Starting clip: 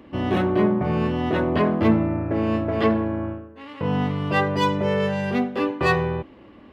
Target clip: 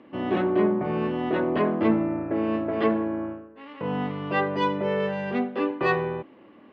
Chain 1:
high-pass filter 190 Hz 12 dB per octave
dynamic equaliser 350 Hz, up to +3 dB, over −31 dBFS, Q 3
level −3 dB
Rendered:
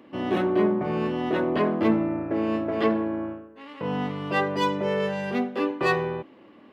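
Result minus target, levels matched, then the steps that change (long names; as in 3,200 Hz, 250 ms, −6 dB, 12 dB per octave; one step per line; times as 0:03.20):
4,000 Hz band +3.0 dB
add after dynamic equaliser: low-pass filter 3,200 Hz 12 dB per octave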